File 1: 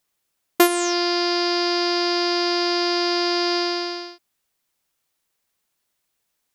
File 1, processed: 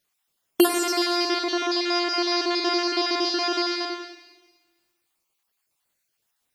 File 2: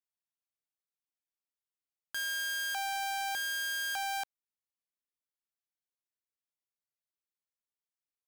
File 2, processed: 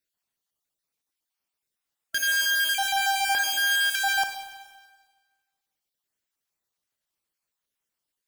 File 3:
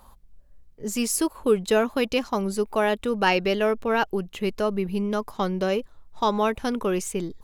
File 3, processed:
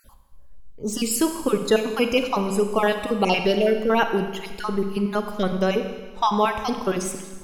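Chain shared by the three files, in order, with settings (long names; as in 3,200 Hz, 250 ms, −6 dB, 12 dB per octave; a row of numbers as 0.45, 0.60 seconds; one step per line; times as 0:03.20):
time-frequency cells dropped at random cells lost 36%
four-comb reverb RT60 1.4 s, combs from 32 ms, DRR 6.5 dB
loudness normalisation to −23 LKFS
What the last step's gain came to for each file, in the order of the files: 0.0, +11.0, +3.5 decibels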